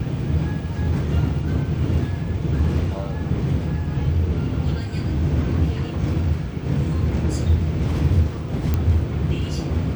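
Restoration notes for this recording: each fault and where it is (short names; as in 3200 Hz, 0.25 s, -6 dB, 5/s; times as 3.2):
8.74 pop -9 dBFS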